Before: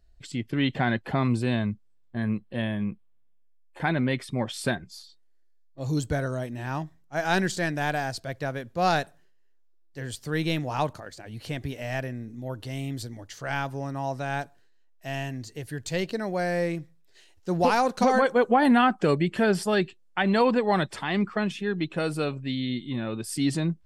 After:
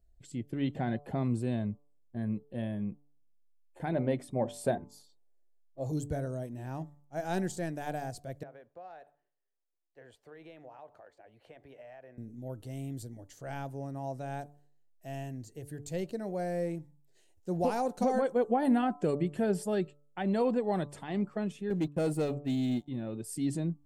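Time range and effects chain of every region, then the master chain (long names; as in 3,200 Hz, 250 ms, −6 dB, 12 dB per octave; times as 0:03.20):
0:03.92–0:05.92: parametric band 670 Hz +9 dB 1.4 octaves + mains-hum notches 50/100/150/200/250/300/350 Hz
0:08.43–0:12.18: three-way crossover with the lows and the highs turned down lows −21 dB, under 470 Hz, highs −24 dB, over 3,000 Hz + downward compressor 4 to 1, threshold −38 dBFS
0:21.70–0:22.88: downward expander −30 dBFS + leveller curve on the samples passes 2
whole clip: flat-topped bell 2,300 Hz −10 dB 2.8 octaves; hum removal 145 Hz, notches 9; level −6 dB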